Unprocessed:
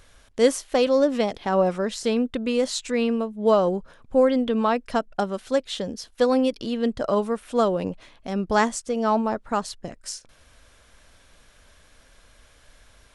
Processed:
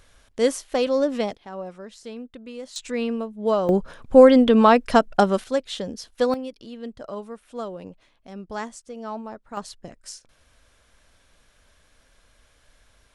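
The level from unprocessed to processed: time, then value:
−2 dB
from 0:01.34 −14 dB
from 0:02.76 −3 dB
from 0:03.69 +7.5 dB
from 0:05.44 −1 dB
from 0:06.34 −11.5 dB
from 0:09.57 −5 dB

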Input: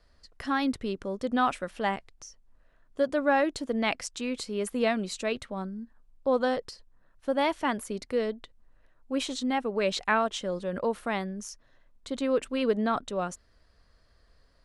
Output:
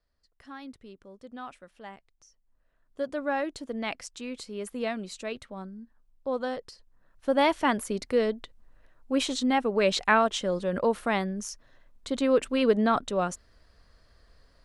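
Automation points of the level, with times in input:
0:01.90 −15.5 dB
0:03.07 −5 dB
0:06.65 −5 dB
0:07.37 +3.5 dB

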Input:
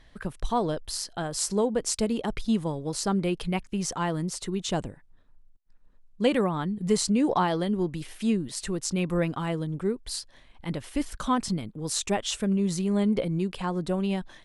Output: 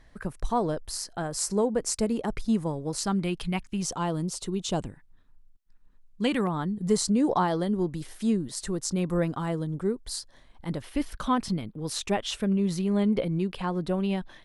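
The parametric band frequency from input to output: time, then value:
parametric band −8 dB 0.73 octaves
3,300 Hz
from 0:02.98 480 Hz
from 0:03.82 1,900 Hz
from 0:04.81 560 Hz
from 0:06.47 2,600 Hz
from 0:10.82 7,500 Hz

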